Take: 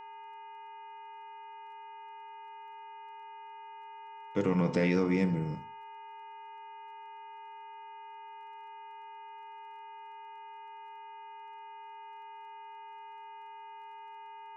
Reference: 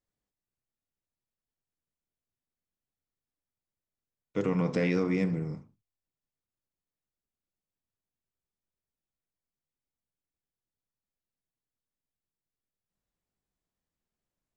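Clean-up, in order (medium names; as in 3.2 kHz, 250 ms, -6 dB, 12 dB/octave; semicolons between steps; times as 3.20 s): de-click; de-hum 411.2 Hz, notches 7; band-stop 900 Hz, Q 30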